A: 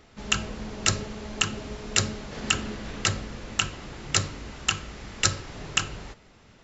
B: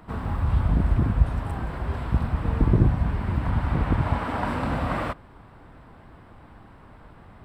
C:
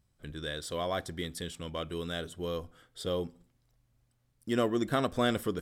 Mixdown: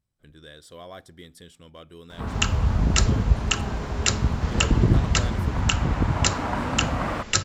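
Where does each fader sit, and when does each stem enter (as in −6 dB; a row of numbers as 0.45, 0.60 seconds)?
+0.5, 0.0, −8.5 decibels; 2.10, 2.10, 0.00 seconds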